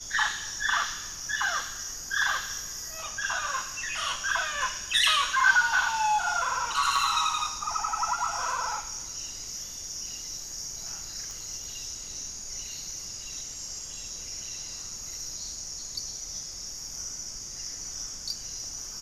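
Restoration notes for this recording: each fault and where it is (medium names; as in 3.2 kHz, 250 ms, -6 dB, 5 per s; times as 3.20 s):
6.96 s: dropout 2.5 ms
11.31 s: pop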